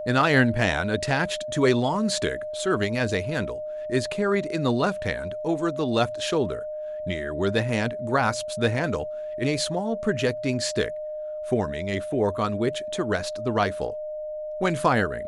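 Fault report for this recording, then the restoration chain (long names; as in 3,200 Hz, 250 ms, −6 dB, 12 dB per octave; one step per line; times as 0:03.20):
whistle 610 Hz −30 dBFS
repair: notch filter 610 Hz, Q 30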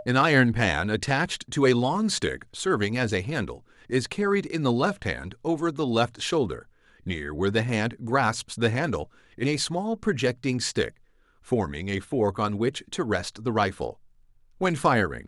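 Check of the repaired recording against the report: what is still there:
none of them is left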